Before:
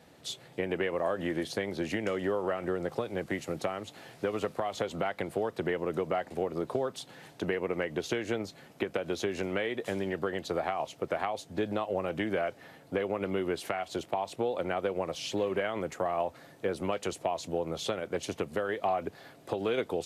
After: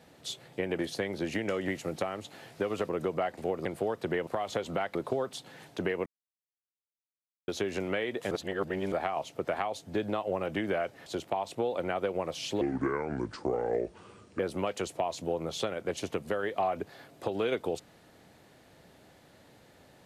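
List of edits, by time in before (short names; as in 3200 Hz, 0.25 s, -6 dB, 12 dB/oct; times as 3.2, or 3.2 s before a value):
0.79–1.37 cut
2.26–3.31 cut
4.52–5.2 swap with 5.82–6.58
7.69–9.11 mute
9.94–10.55 reverse
12.69–13.87 cut
15.42–16.65 speed 69%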